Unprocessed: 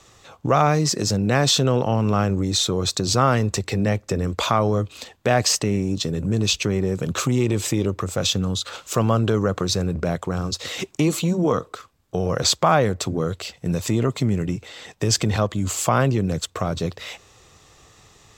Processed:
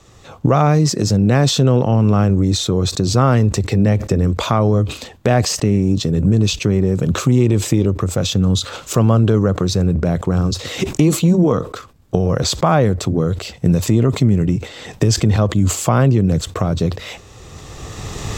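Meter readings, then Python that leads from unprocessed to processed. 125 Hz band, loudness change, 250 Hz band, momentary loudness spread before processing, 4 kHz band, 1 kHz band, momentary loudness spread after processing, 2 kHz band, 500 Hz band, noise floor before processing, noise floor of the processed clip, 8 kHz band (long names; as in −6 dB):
+8.5 dB, +5.5 dB, +7.5 dB, 9 LU, +0.5 dB, +1.5 dB, 8 LU, +0.5 dB, +4.0 dB, −54 dBFS, −41 dBFS, +1.0 dB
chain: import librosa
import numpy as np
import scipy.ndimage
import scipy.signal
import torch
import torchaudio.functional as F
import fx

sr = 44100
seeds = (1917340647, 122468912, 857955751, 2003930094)

y = fx.recorder_agc(x, sr, target_db=-12.5, rise_db_per_s=15.0, max_gain_db=30)
y = fx.low_shelf(y, sr, hz=470.0, db=9.5)
y = fx.sustainer(y, sr, db_per_s=140.0)
y = y * 10.0 ** (-1.0 / 20.0)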